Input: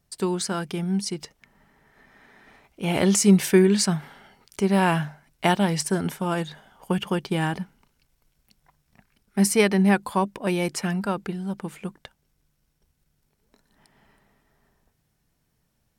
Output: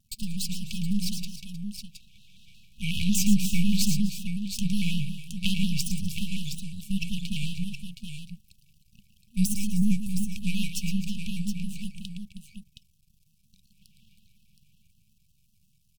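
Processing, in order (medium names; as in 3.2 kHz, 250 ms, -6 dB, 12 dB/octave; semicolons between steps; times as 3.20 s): in parallel at 0 dB: compression, threshold -31 dBFS, peak gain reduction 18 dB; on the sum: half-wave rectifier; 9.45–10.26 s: high-order bell 3 kHz -11.5 dB; on a send: multi-tap echo 112/255/314/719 ms -9/-19/-14.5/-8 dB; on the sum: dynamic bell 9.9 kHz, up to -4 dB, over -47 dBFS, Q 1.1; FFT band-reject 220–2400 Hz; vibrato with a chosen wave square 5.5 Hz, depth 100 cents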